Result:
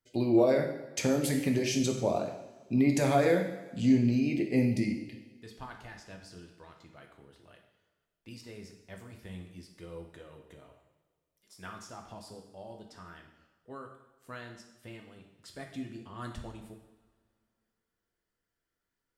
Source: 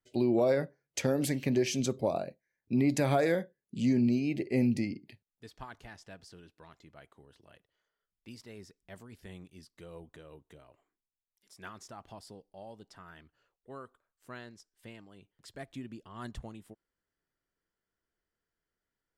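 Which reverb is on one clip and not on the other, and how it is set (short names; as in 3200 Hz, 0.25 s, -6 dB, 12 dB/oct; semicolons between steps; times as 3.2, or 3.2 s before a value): two-slope reverb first 0.8 s, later 2.4 s, from -19 dB, DRR 2 dB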